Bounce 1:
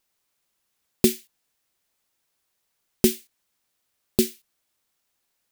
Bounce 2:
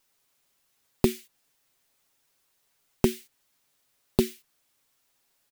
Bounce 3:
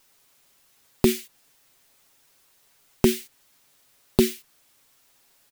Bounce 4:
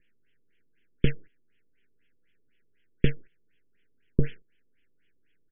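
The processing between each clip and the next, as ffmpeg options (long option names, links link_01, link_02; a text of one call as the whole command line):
ffmpeg -i in.wav -filter_complex "[0:a]aecho=1:1:7.3:0.48,acrossover=split=740|3000[link_01][link_02][link_03];[link_03]alimiter=limit=-21dB:level=0:latency=1:release=340[link_04];[link_01][link_02][link_04]amix=inputs=3:normalize=0,acompressor=threshold=-20dB:ratio=6,volume=3dB" out.wav
ffmpeg -i in.wav -af "alimiter=level_in=11dB:limit=-1dB:release=50:level=0:latency=1,volume=-1dB" out.wav
ffmpeg -i in.wav -af "aeval=exprs='abs(val(0))':channel_layout=same,asuperstop=centerf=860:order=12:qfactor=0.83,afftfilt=real='re*lt(b*sr/1024,960*pow(3500/960,0.5+0.5*sin(2*PI*4*pts/sr)))':imag='im*lt(b*sr/1024,960*pow(3500/960,0.5+0.5*sin(2*PI*4*pts/sr)))':win_size=1024:overlap=0.75" out.wav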